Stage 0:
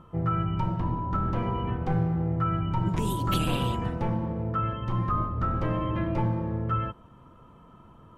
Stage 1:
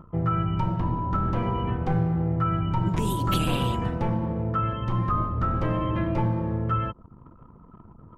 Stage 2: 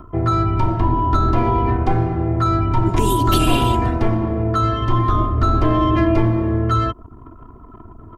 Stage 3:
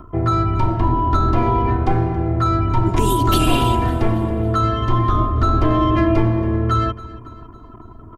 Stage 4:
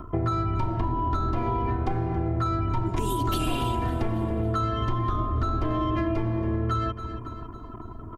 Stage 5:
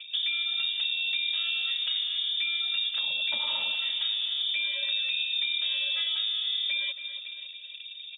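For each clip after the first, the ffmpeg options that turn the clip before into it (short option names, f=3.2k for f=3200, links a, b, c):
-filter_complex "[0:a]anlmdn=0.00631,asplit=2[a][b];[b]acompressor=threshold=-35dB:ratio=6,volume=-0.5dB[c];[a][c]amix=inputs=2:normalize=0"
-filter_complex "[0:a]aecho=1:1:2.9:0.77,acrossover=split=380|1100|3100[a][b][c][d];[c]asoftclip=type=tanh:threshold=-32.5dB[e];[a][b][e][d]amix=inputs=4:normalize=0,volume=8dB"
-af "aecho=1:1:277|554|831|1108:0.126|0.0655|0.034|0.0177"
-af "acompressor=threshold=-23dB:ratio=6"
-af "lowpass=f=3.1k:t=q:w=0.5098,lowpass=f=3.1k:t=q:w=0.6013,lowpass=f=3.1k:t=q:w=0.9,lowpass=f=3.1k:t=q:w=2.563,afreqshift=-3700,volume=-4dB"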